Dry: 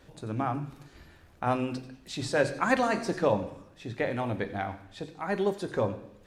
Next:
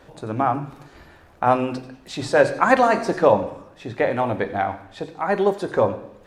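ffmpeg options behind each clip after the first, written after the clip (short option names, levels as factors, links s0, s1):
-af "equalizer=f=800:w=0.51:g=8.5,volume=1.41"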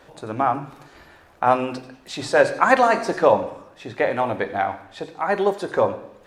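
-af "lowshelf=f=310:g=-7.5,volume=1.19"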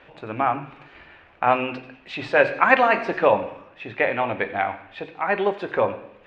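-af "lowpass=f=2600:t=q:w=3.2,volume=0.75"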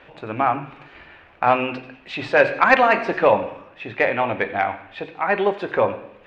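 -af "asoftclip=type=tanh:threshold=0.668,volume=1.33"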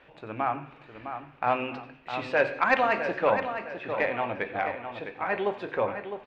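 -filter_complex "[0:a]asplit=2[s0][s1];[s1]adelay=658,lowpass=f=4500:p=1,volume=0.376,asplit=2[s2][s3];[s3]adelay=658,lowpass=f=4500:p=1,volume=0.41,asplit=2[s4][s5];[s5]adelay=658,lowpass=f=4500:p=1,volume=0.41,asplit=2[s6][s7];[s7]adelay=658,lowpass=f=4500:p=1,volume=0.41,asplit=2[s8][s9];[s9]adelay=658,lowpass=f=4500:p=1,volume=0.41[s10];[s0][s2][s4][s6][s8][s10]amix=inputs=6:normalize=0,volume=0.376"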